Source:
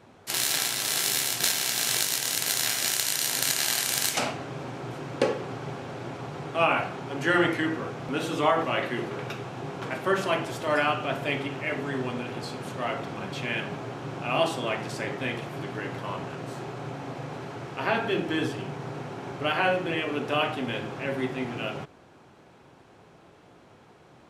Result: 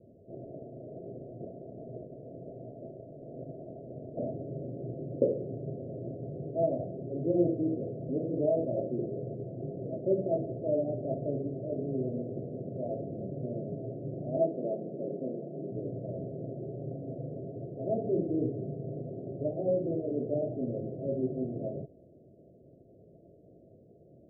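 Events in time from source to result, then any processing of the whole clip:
14.37–15.72 Chebyshev high-pass 160 Hz, order 4
whole clip: Chebyshev low-pass 670 Hz, order 8; gain -1 dB

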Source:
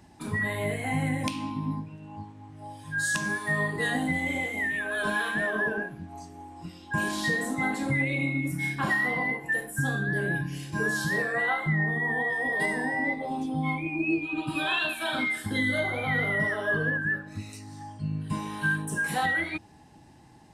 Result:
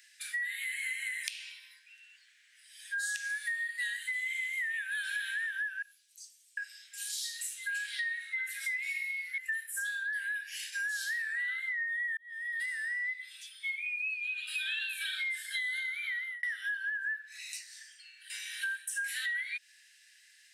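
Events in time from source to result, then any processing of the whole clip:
5.82–9.38 three bands offset in time highs, lows, mids 30/750 ms, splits 810/3700 Hz
12.17–13.42 fade in
15.81–16.43 fade out
whole clip: steep high-pass 1600 Hz 72 dB/oct; compressor, threshold -39 dBFS; gain +5.5 dB

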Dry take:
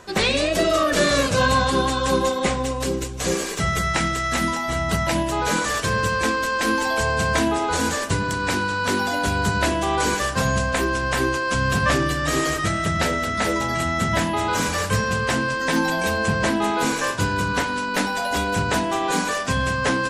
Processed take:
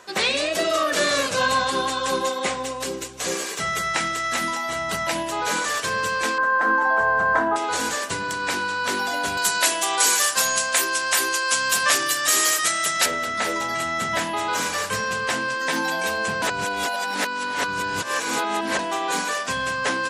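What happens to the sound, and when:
6.38–7.56 EQ curve 450 Hz 0 dB, 860 Hz +6 dB, 1600 Hz +5 dB, 2400 Hz -15 dB, 11000 Hz -24 dB
9.37–13.06 RIAA curve recording
16.42–18.79 reverse
whole clip: HPF 610 Hz 6 dB/oct

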